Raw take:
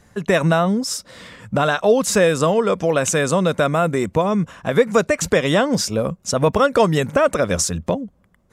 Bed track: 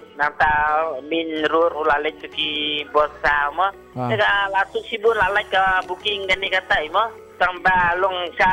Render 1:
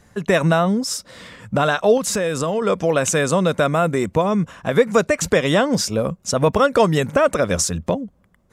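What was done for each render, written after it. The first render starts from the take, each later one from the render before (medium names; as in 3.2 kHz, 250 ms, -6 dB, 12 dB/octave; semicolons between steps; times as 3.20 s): 1.97–2.62 s: compression 4:1, threshold -18 dBFS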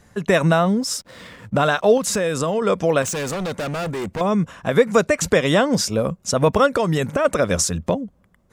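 0.54–2.21 s: hysteresis with a dead band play -44.5 dBFS; 3.02–4.21 s: overload inside the chain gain 23.5 dB; 6.70–7.25 s: compression, threshold -15 dBFS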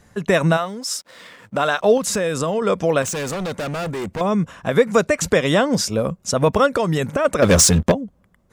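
0.56–1.79 s: high-pass 1.2 kHz -> 330 Hz 6 dB/octave; 7.42–7.92 s: waveshaping leveller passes 3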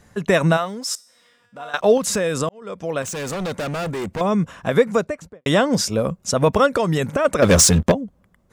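0.95–1.74 s: feedback comb 240 Hz, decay 0.8 s, mix 90%; 2.49–3.44 s: fade in; 4.70–5.46 s: studio fade out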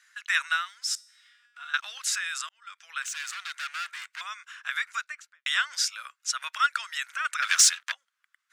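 elliptic high-pass 1.4 kHz, stop band 80 dB; treble shelf 9.5 kHz -11.5 dB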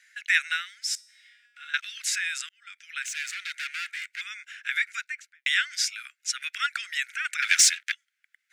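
steep high-pass 1.5 kHz 48 dB/octave; peaking EQ 2.2 kHz +8 dB 0.45 oct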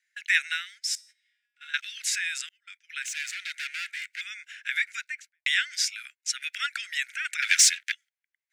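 high-pass 1.5 kHz 24 dB/octave; gate -48 dBFS, range -17 dB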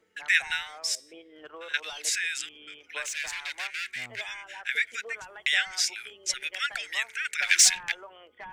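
add bed track -27 dB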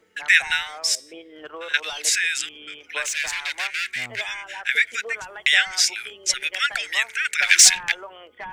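trim +7.5 dB; peak limiter -2 dBFS, peak gain reduction 2 dB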